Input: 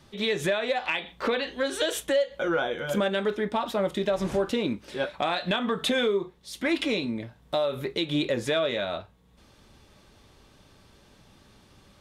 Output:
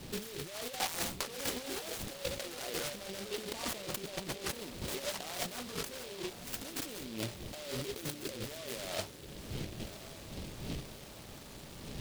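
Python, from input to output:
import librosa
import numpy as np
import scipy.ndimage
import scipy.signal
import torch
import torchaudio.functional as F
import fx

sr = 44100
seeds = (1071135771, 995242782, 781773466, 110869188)

p1 = fx.dmg_wind(x, sr, seeds[0], corner_hz=190.0, level_db=-43.0)
p2 = fx.over_compress(p1, sr, threshold_db=-38.0, ratio=-1.0)
p3 = scipy.signal.sosfilt(scipy.signal.butter(8, 3500.0, 'lowpass', fs=sr, output='sos'), p2)
p4 = fx.low_shelf(p3, sr, hz=330.0, db=-9.0)
p5 = p4 + fx.echo_diffused(p4, sr, ms=1031, feedback_pct=59, wet_db=-12, dry=0)
y = fx.noise_mod_delay(p5, sr, seeds[1], noise_hz=3200.0, depth_ms=0.18)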